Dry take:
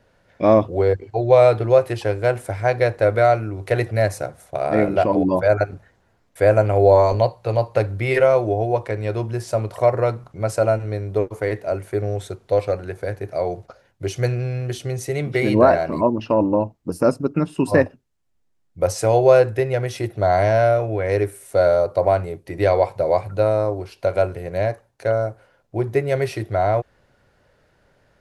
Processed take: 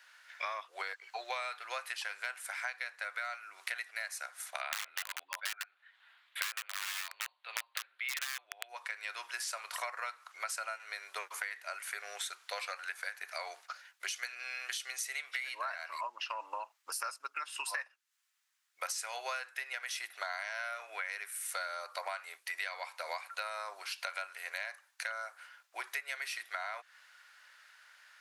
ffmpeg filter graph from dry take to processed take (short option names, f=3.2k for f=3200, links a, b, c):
-filter_complex "[0:a]asettb=1/sr,asplit=3[a][b][c];[a]atrim=end=4.614[d];[b]atrim=start=4.61:end=8.69,asetpts=PTS-STARTPTS,afade=t=in:d=0.004:c=qsin,afade=t=out:st=4.076:d=0.004:c=qsin,highshelf=f=4.6k:t=q:w=3:g=-9.5,aeval=exprs='(mod(3.16*val(0)+1,2)-1)/3.16':c=same[e];[c]atrim=start=8.686[f];[d][e]acrossfade=d=0.004:c1=hsin:c2=qsin[g];[g][f]acrossfade=d=0.004:c1=qsin:c2=hsin,highpass=f=1.3k:w=0.5412,highpass=f=1.3k:w=1.3066,acompressor=threshold=-43dB:ratio=12,volume=7.5dB"